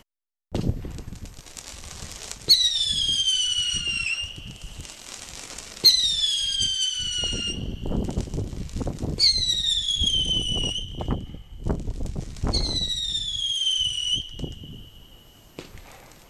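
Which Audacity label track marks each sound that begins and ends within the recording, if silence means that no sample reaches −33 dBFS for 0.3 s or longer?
0.530000	14.830000	sound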